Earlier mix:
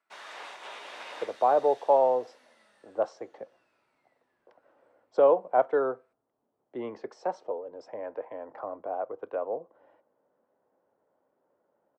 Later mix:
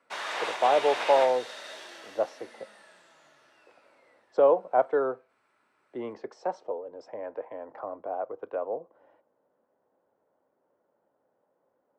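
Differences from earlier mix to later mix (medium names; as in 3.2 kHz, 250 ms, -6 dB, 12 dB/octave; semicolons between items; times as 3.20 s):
speech: entry -0.80 s; background +10.5 dB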